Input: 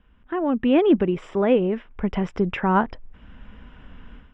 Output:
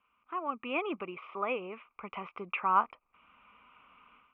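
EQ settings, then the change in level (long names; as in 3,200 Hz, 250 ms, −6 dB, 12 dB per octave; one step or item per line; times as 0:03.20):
pair of resonant band-passes 1,700 Hz, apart 1 octave
high-frequency loss of the air 280 metres
+5.5 dB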